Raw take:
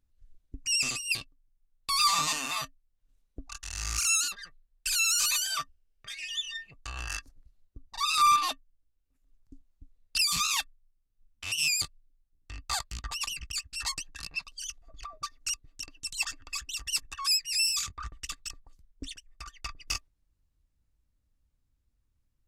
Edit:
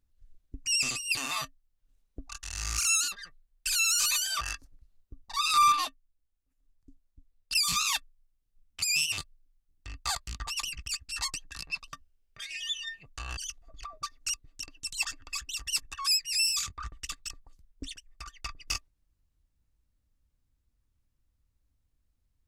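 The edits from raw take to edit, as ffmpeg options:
-filter_complex "[0:a]asplit=9[a][b][c][d][e][f][g][h][i];[a]atrim=end=1.172[j];[b]atrim=start=2.368:end=5.612[k];[c]atrim=start=7.048:end=8.492[l];[d]atrim=start=8.488:end=10.192,asetpts=PTS-STARTPTS,volume=-4.5dB[m];[e]atrim=start=10.188:end=11.462[n];[f]atrim=start=11.458:end=11.822,asetpts=PTS-STARTPTS,areverse[o];[g]atrim=start=11.818:end=14.572[p];[h]atrim=start=5.608:end=7.052[q];[i]atrim=start=14.568[r];[j][k]acrossfade=d=0.004:c1=hsin:c2=hsin[s];[s][l]acrossfade=d=0.004:c1=hsin:c2=hsin[t];[t][m]acrossfade=d=0.004:c1=hsin:c2=hsin[u];[u][n]acrossfade=d=0.004:c1=hsin:c2=hsin[v];[v][o]acrossfade=d=0.004:c1=hsin:c2=hsin[w];[w][p]acrossfade=d=0.004:c1=hsin:c2=hsin[x];[x][q]acrossfade=d=0.004:c1=hsin:c2=hsin[y];[y][r]acrossfade=d=0.004:c1=hsin:c2=hsin"

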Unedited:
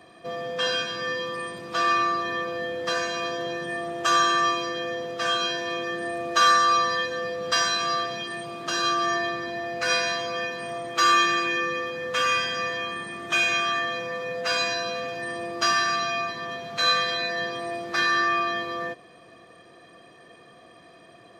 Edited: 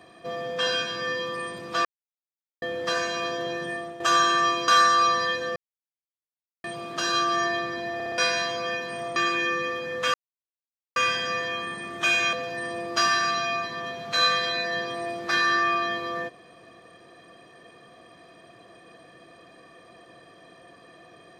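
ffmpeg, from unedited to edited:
-filter_complex "[0:a]asplit=14[a][b][c][d][e][f][g][h][i][j][k][l][m][n];[a]atrim=end=1.85,asetpts=PTS-STARTPTS,afade=t=out:st=1.846:d=0.004:c=hsin[o];[b]atrim=start=1.85:end=2.62,asetpts=PTS-STARTPTS,volume=0[p];[c]atrim=start=2.62:end=4,asetpts=PTS-STARTPTS,afade=t=in:d=0.004:c=hsin,afade=t=out:st=1.05:d=0.33:silence=0.316228[q];[d]atrim=start=4:end=4.682,asetpts=PTS-STARTPTS,afade=t=in:d=0.004:c=hsin:silence=0.316228[r];[e]atrim=start=6.378:end=7.26,asetpts=PTS-STARTPTS,afade=t=out:st=0.878:d=0.004:c=hsin[s];[f]atrim=start=7.26:end=8.34,asetpts=PTS-STARTPTS,volume=0[t];[g]atrim=start=8.34:end=9.702,asetpts=PTS-STARTPTS,afade=t=in:d=0.004:c=hsin[u];[h]atrim=start=9.638:end=9.702[v];[i]atrim=start=9.638:end=9.702[w];[j]atrim=start=9.638:end=9.702[x];[k]atrim=start=9.878:end=10.862[y];[l]atrim=start=11.268:end=12.25,asetpts=PTS-STARTPTS,afade=t=out:st=0.978:d=0.004:c=hsin,apad=pad_dur=0.82[z];[m]atrim=start=12.25:end=13.622,asetpts=PTS-STARTPTS,afade=t=in:d=0.004:c=hsin[aa];[n]atrim=start=14.978[ab];[o][p][q][r]concat=n=4:v=0:a=1[ac];[s][t][u]concat=n=3:v=0:a=1[ad];[ac][ad]acrossfade=d=0.004:c1=hsin:c2=hsin[ae];[ae][v]acrossfade=d=0.004:c1=hsin:c2=hsin[af];[af][w]acrossfade=d=0.004:c1=hsin:c2=hsin[ag];[ag][x]acrossfade=d=0.004:c1=hsin:c2=hsin[ah];[ah][y]acrossfade=d=0.004:c1=hsin:c2=hsin[ai];[z][aa]concat=n=2:v=0:a=1[aj];[ai][aj]acrossfade=d=0.004:c1=hsin:c2=hsin[ak];[ak][ab]acrossfade=d=0.004:c1=hsin:c2=hsin"

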